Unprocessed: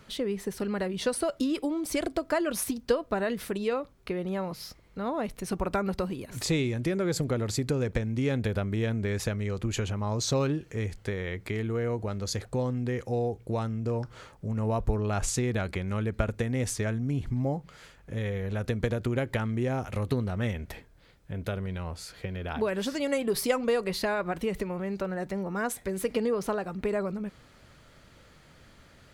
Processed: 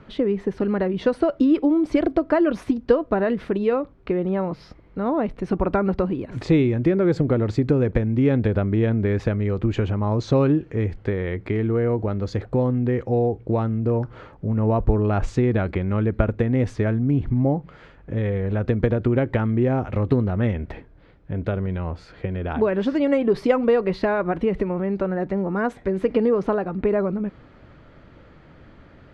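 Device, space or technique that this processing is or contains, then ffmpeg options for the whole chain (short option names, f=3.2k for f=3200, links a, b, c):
phone in a pocket: -af "lowpass=3.3k,equalizer=f=310:t=o:w=0.49:g=4.5,highshelf=f=2.1k:g=-10.5,volume=8dB"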